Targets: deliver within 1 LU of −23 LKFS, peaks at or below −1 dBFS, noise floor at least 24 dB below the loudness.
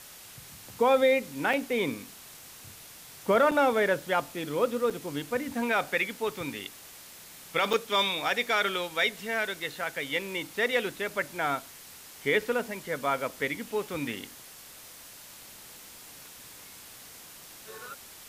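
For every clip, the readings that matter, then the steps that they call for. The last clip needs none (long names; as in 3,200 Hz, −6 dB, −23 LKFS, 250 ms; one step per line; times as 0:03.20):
number of dropouts 4; longest dropout 5.6 ms; background noise floor −49 dBFS; target noise floor −53 dBFS; integrated loudness −28.5 LKFS; sample peak −13.5 dBFS; target loudness −23.0 LKFS
→ repair the gap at 0:01.53/0:03.51/0:04.90/0:07.73, 5.6 ms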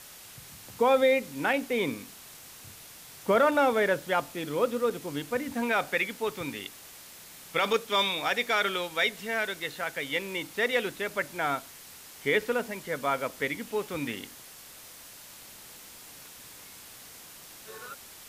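number of dropouts 0; background noise floor −49 dBFS; target noise floor −53 dBFS
→ noise reduction from a noise print 6 dB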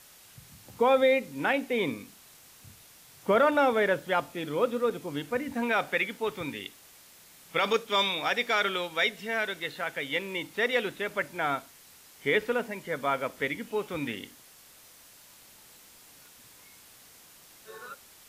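background noise floor −55 dBFS; integrated loudness −28.5 LKFS; sample peak −13.5 dBFS; target loudness −23.0 LKFS
→ level +5.5 dB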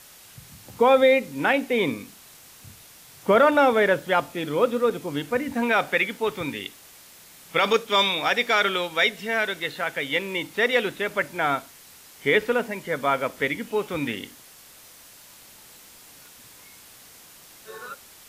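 integrated loudness −23.0 LKFS; sample peak −8.0 dBFS; background noise floor −49 dBFS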